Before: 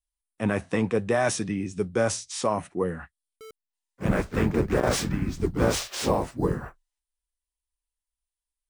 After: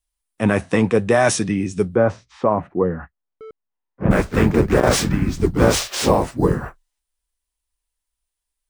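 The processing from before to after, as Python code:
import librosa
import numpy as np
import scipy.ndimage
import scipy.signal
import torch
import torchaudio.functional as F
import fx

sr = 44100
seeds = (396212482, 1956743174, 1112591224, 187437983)

y = fx.lowpass(x, sr, hz=1300.0, slope=12, at=(1.95, 4.11))
y = y * librosa.db_to_amplitude(8.0)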